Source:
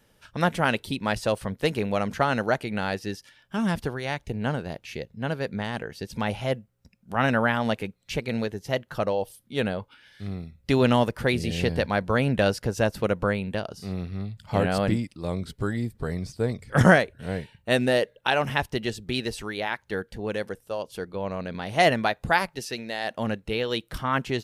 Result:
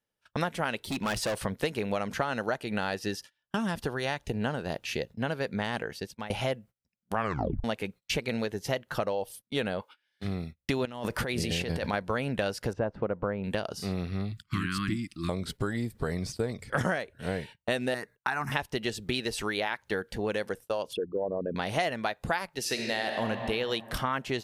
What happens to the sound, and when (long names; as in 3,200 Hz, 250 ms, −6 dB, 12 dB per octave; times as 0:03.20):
0:00.77–0:01.42: hard clipping −28.5 dBFS
0:02.30–0:05.14: notch filter 2,200 Hz
0:05.75–0:06.30: fade out, to −24 dB
0:07.16: tape stop 0.48 s
0:09.80–0:10.23: high-pass filter 590 Hz → 140 Hz
0:10.85–0:11.94: compressor whose output falls as the input rises −30 dBFS
0:12.73–0:13.44: low-pass filter 1,200 Hz
0:14.32–0:15.29: Chebyshev band-stop filter 350–1,100 Hz, order 4
0:17.94–0:18.52: phaser with its sweep stopped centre 1,300 Hz, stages 4
0:20.93–0:21.56: spectral envelope exaggerated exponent 3
0:22.60–0:23.25: thrown reverb, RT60 2.4 s, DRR 2 dB
whole clip: low-shelf EQ 240 Hz −6.5 dB; noise gate −46 dBFS, range −29 dB; downward compressor 6 to 1, threshold −33 dBFS; level +6 dB